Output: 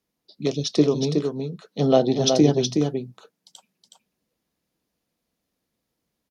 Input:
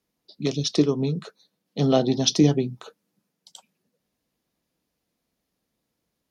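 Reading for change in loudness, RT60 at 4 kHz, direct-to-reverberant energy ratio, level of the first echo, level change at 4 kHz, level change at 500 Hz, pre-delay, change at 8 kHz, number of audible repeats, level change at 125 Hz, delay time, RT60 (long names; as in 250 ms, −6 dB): +1.0 dB, no reverb audible, no reverb audible, −5.0 dB, 0.0 dB, +4.5 dB, no reverb audible, can't be measured, 1, 0.0 dB, 369 ms, no reverb audible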